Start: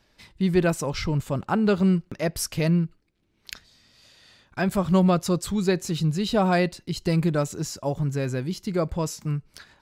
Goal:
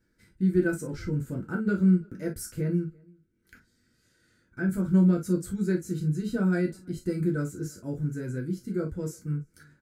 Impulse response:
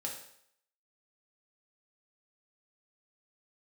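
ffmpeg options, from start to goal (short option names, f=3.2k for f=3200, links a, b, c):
-filter_complex "[0:a]asettb=1/sr,asplit=3[a][b][c];[a]atrim=end=2.604[d];[b]atrim=start=2.6:end=4.7,asetpts=PTS-STARTPTS,afade=t=in:d=0.004:c=qsin,afade=t=out:st=2.096:d=0.004:c=qsin,acrossover=split=2600[e][f];[f]acompressor=threshold=-46dB:ratio=4:attack=1:release=60[g];[e][g]amix=inputs=2:normalize=0[h];[c]atrim=start=4.696[i];[d][h]acrossfade=d=0.004:c1=hsin:c2=qsin[j];[j][i]acrossfade=d=0.004:c1=qsin:c2=hsin,firequalizer=gain_entry='entry(340,0);entry(890,-23);entry(1500,-1);entry(2700,-19);entry(8200,-4)':delay=0.05:min_phase=1,asplit=2[k][l];[l]adelay=338.2,volume=-28dB,highshelf=f=4k:g=-7.61[m];[k][m]amix=inputs=2:normalize=0[n];[1:a]atrim=start_sample=2205,afade=t=out:st=0.16:d=0.01,atrim=end_sample=7497,asetrate=74970,aresample=44100[o];[n][o]afir=irnorm=-1:irlink=0,volume=2dB"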